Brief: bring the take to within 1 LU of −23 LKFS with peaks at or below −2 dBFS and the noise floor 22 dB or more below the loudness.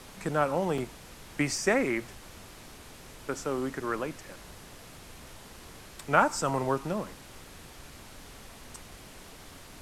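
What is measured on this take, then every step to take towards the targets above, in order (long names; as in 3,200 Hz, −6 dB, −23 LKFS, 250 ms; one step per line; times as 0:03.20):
number of dropouts 1; longest dropout 3.4 ms; background noise floor −49 dBFS; target noise floor −52 dBFS; integrated loudness −30.0 LKFS; sample peak −7.5 dBFS; target loudness −23.0 LKFS
→ repair the gap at 0:00.78, 3.4 ms
noise reduction from a noise print 6 dB
level +7 dB
brickwall limiter −2 dBFS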